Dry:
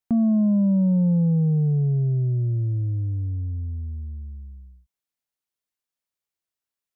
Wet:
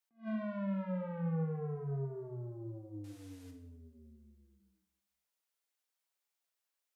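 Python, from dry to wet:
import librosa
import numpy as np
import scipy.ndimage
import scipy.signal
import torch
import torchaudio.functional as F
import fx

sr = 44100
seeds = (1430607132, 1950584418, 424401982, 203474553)

y = fx.cvsd(x, sr, bps=64000, at=(3.04, 3.51))
y = scipy.signal.sosfilt(scipy.signal.butter(2, 450.0, 'highpass', fs=sr, output='sos'), y)
y = 10.0 ** (-37.0 / 20.0) * np.tanh(y / 10.0 ** (-37.0 / 20.0))
y = fx.rev_plate(y, sr, seeds[0], rt60_s=0.95, hf_ratio=0.8, predelay_ms=0, drr_db=3.5)
y = fx.attack_slew(y, sr, db_per_s=270.0)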